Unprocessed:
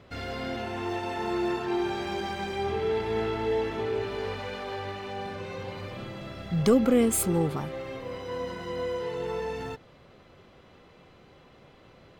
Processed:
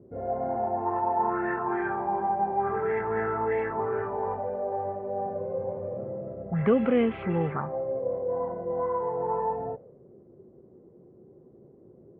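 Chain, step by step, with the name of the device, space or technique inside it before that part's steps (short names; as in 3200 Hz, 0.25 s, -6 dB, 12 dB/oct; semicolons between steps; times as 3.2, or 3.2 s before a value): envelope filter bass rig (envelope low-pass 330–3000 Hz up, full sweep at -21.5 dBFS; speaker cabinet 79–2000 Hz, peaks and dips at 80 Hz -8 dB, 300 Hz -8 dB, 1300 Hz -3 dB)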